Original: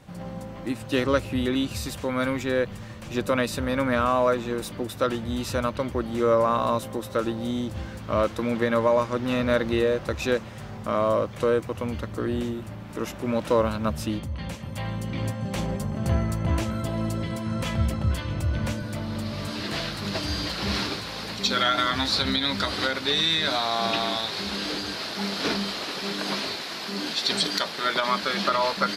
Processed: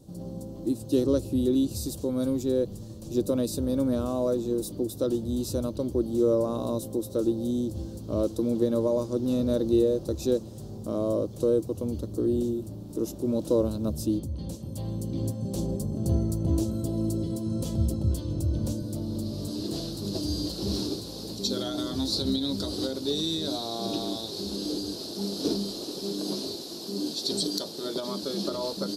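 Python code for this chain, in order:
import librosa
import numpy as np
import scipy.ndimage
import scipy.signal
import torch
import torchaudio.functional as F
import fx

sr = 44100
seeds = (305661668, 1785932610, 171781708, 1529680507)

y = fx.curve_eq(x, sr, hz=(220.0, 330.0, 2100.0, 4100.0, 11000.0), db=(0, 7, -28, -3, 4))
y = F.gain(torch.from_numpy(y), -1.5).numpy()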